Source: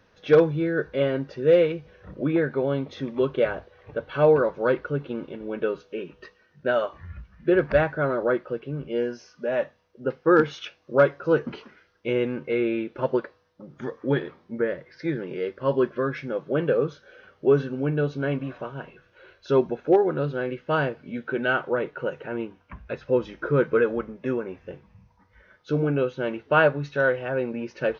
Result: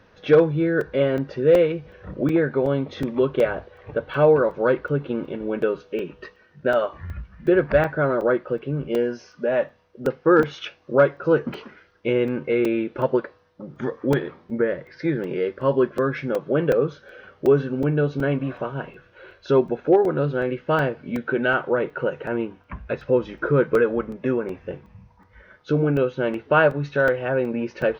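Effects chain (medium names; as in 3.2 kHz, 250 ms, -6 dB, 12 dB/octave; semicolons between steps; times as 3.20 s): treble shelf 4.6 kHz -8.5 dB; in parallel at +1 dB: compression, threshold -28 dBFS, peak gain reduction 15 dB; on the sum: crackling interface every 0.37 s, samples 128, zero, from 0.81 s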